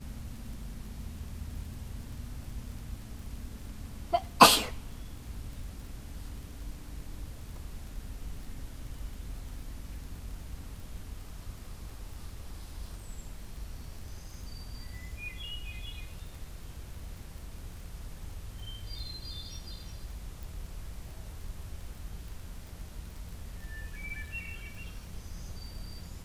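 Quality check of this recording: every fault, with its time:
crackle 23 per s -41 dBFS
20.43 s: pop

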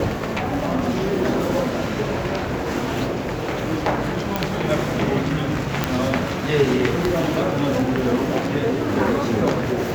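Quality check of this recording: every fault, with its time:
4.36 s: pop -7 dBFS
5.84 s: pop -4 dBFS

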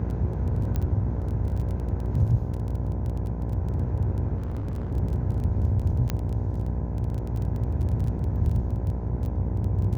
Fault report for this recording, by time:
buzz 60 Hz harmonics 17 -30 dBFS
crackle 17 per s -32 dBFS
0.76 s: pop -16 dBFS
4.37–4.92 s: clipped -27 dBFS
6.10 s: pop -13 dBFS

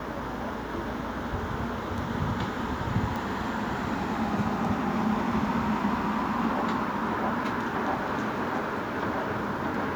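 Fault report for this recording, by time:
3.16 s: pop

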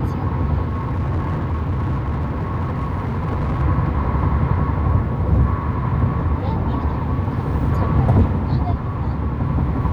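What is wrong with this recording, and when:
0.69–3.63 s: clipped -17.5 dBFS

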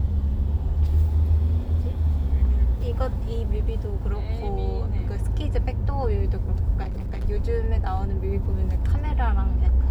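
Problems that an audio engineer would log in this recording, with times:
6.82–7.25 s: clipped -25.5 dBFS

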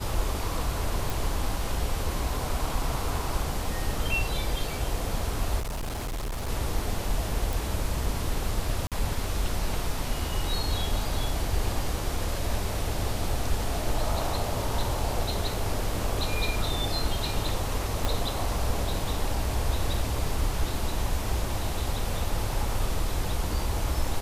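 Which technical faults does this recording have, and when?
1.10 s: pop
5.59–6.49 s: clipped -28.5 dBFS
7.53 s: pop
8.87–8.92 s: dropout 47 ms
18.05 s: pop -12 dBFS

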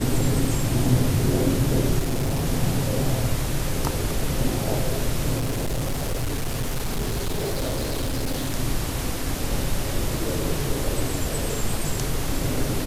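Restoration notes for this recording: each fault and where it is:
1.99–2.46 s: clipped -20 dBFS
5.37–8.55 s: clipped -21.5 dBFS

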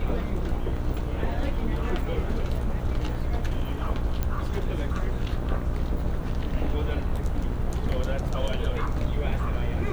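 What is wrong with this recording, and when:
buzz 60 Hz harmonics 27 -31 dBFS
4.23 s: pop -14 dBFS

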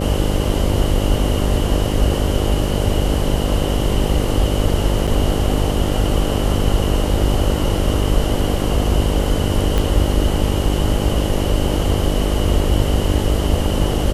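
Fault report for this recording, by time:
buzz 50 Hz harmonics 12 -21 dBFS
5.07–5.08 s: dropout 6.6 ms
9.78 s: pop -6 dBFS

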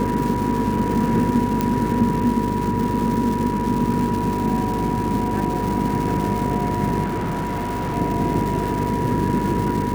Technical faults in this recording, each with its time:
buzz 50 Hz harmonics 9 -26 dBFS
crackle 550 per s -27 dBFS
whine 970 Hz -25 dBFS
1.61 s: pop -7 dBFS
7.04–7.97 s: clipped -21 dBFS

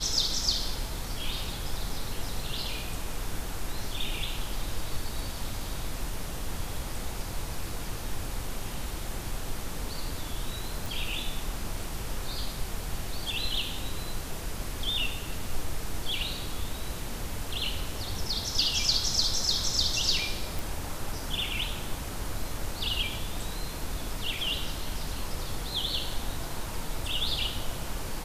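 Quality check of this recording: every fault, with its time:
10.86 s: pop
20.59 s: pop

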